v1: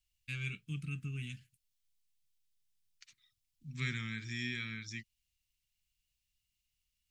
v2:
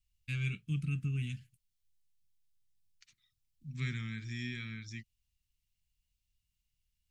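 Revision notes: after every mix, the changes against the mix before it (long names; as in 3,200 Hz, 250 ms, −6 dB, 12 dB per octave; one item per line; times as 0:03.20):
second voice −4.0 dB
master: add low-shelf EQ 260 Hz +8 dB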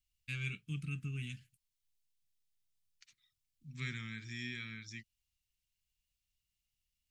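master: add low-shelf EQ 260 Hz −8 dB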